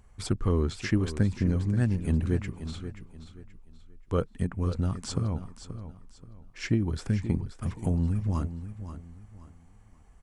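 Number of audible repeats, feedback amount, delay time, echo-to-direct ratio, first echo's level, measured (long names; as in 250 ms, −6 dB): 3, 31%, 530 ms, −11.0 dB, −11.5 dB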